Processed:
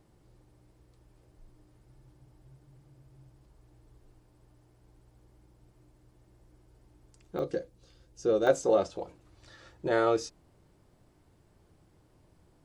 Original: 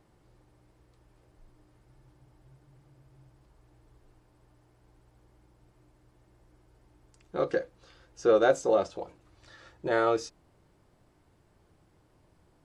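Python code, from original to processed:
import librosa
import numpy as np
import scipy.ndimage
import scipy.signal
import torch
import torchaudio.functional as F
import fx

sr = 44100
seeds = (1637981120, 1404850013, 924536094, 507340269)

y = fx.peak_eq(x, sr, hz=1400.0, db=fx.steps((0.0, -5.5), (7.39, -14.0), (8.47, -4.0)), octaves=2.8)
y = F.gain(torch.from_numpy(y), 2.0).numpy()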